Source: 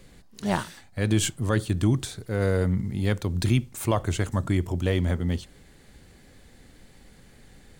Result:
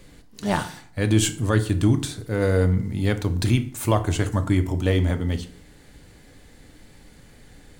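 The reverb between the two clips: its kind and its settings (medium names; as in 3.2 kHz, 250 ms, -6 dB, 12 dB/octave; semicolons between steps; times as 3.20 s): FDN reverb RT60 0.55 s, low-frequency decay 1.1×, high-frequency decay 0.7×, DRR 8 dB; trim +2.5 dB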